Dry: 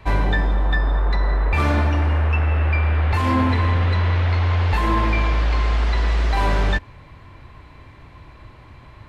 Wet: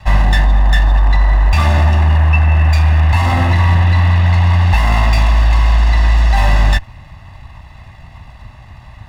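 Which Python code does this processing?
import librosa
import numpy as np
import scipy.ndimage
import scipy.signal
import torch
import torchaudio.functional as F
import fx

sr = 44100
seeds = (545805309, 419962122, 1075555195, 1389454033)

y = fx.lower_of_two(x, sr, delay_ms=1.5)
y = y + 0.73 * np.pad(y, (int(1.1 * sr / 1000.0), 0))[:len(y)]
y = F.gain(torch.from_numpy(y), 4.5).numpy()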